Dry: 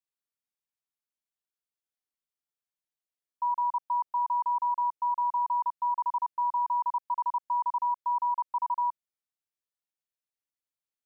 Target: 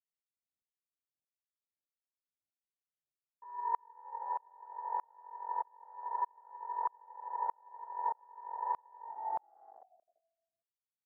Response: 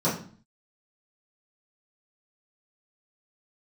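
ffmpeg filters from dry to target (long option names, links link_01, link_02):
-filter_complex "[0:a]asettb=1/sr,asplit=3[link_01][link_02][link_03];[link_01]atrim=end=3.964[link_04];[link_02]atrim=start=3.96:end=6.06,asetpts=PTS-STARTPTS,afade=type=in:duration=0.004:curve=qsin,afade=type=out:start_time=2.096:duration=0.004:curve=qsin,adynamicequalizer=threshold=0.00708:dfrequency=670:dqfactor=1.1:tfrequency=670:tqfactor=1.1:attack=5:release=100:ratio=0.375:range=3.5:mode=cutabove:tftype=bell[link_05];[link_03]atrim=start=6.056[link_06];[link_04][link_05]acrossfade=duration=0.004:curve1=hsin:curve2=qsin[link_07];[link_07][link_06]acrossfade=duration=0.004:curve1=qsin:curve2=hsin,asplit=8[link_08][link_09][link_10][link_11][link_12][link_13][link_14][link_15];[link_09]adelay=194,afreqshift=-44,volume=-8dB[link_16];[link_10]adelay=388,afreqshift=-88,volume=-12.6dB[link_17];[link_11]adelay=582,afreqshift=-132,volume=-17.2dB[link_18];[link_12]adelay=776,afreqshift=-176,volume=-21.7dB[link_19];[link_13]adelay=970,afreqshift=-220,volume=-26.3dB[link_20];[link_14]adelay=1164,afreqshift=-264,volume=-30.9dB[link_21];[link_15]adelay=1358,afreqshift=-308,volume=-35.5dB[link_22];[link_08][link_16][link_17][link_18][link_19][link_20][link_21][link_22]amix=inputs=8:normalize=0,acompressor=threshold=-39dB:ratio=2.5,aemphasis=mode=production:type=50kf[link_23];[1:a]atrim=start_sample=2205,asetrate=25137,aresample=44100[link_24];[link_23][link_24]afir=irnorm=-1:irlink=0,afwtdn=0.0398,lowpass=1100,aeval=exprs='val(0)*pow(10,-36*if(lt(mod(-1.6*n/s,1),2*abs(-1.6)/1000),1-mod(-1.6*n/s,1)/(2*abs(-1.6)/1000),(mod(-1.6*n/s,1)-2*abs(-1.6)/1000)/(1-2*abs(-1.6)/1000))/20)':channel_layout=same,volume=-5dB"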